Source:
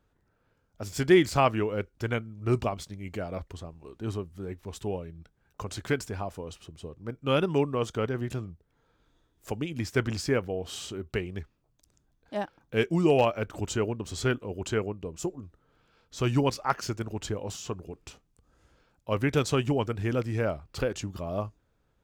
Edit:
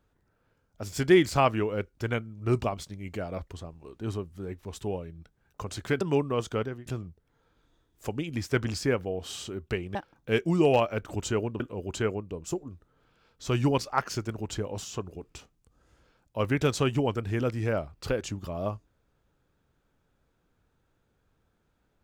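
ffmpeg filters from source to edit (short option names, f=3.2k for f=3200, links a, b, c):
-filter_complex "[0:a]asplit=5[a][b][c][d][e];[a]atrim=end=6.012[f];[b]atrim=start=7.438:end=8.29,asetpts=PTS-STARTPTS,afade=t=out:st=0.572:d=0.28:silence=0.0668344[g];[c]atrim=start=8.29:end=11.382,asetpts=PTS-STARTPTS,afade=t=in:d=0.004:c=hsin:silence=0.0668344[h];[d]atrim=start=12.398:end=14.052[i];[e]atrim=start=14.318[j];[g][h]concat=n=2:v=0:a=1[k];[f][k]acrossfade=d=0.004:c1=hsin:c2=hsin[l];[l][i]acrossfade=d=0.004:c1=hsin:c2=hsin[m];[m][j]acrossfade=d=0.004:c1=hsin:c2=hsin"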